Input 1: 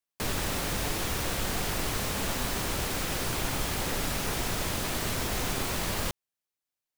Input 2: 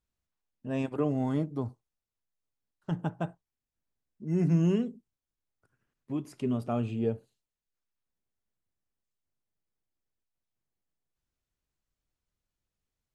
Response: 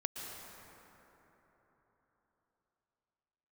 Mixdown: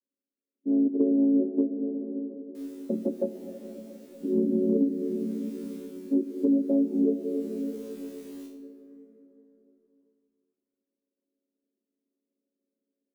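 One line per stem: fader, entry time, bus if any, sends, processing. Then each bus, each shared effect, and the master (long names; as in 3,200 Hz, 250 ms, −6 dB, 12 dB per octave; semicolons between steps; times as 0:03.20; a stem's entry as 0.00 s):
−20.0 dB, 2.35 s, send −10.5 dB, spectral tilt +2 dB per octave; tuned comb filter 69 Hz, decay 0.53 s, harmonics all, mix 100%; automatic ducking −8 dB, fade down 0.35 s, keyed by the second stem
+1.0 dB, 0.00 s, send −5 dB, channel vocoder with a chord as carrier minor triad, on F#3; Chebyshev band-pass filter 250–550 Hz, order 3; automatic gain control gain up to 12 dB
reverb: on, RT60 4.1 s, pre-delay 107 ms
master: downward compressor 2.5 to 1, threshold −24 dBFS, peak gain reduction 9 dB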